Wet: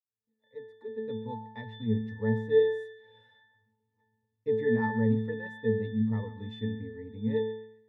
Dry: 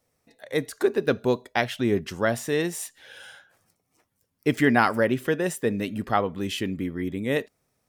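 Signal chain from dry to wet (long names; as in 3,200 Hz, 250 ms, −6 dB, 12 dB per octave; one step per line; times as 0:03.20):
fade in at the beginning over 2.44 s
in parallel at −2 dB: brickwall limiter −14.5 dBFS, peak gain reduction 8.5 dB
on the sum: resonances in every octave A, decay 0.75 s
feedback echo with a band-pass in the loop 134 ms, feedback 44%, band-pass 1,700 Hz, level −14.5 dB
level +8 dB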